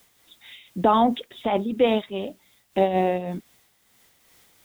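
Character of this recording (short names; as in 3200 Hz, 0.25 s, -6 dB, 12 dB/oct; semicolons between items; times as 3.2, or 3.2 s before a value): a quantiser's noise floor 10-bit, dither triangular; noise-modulated level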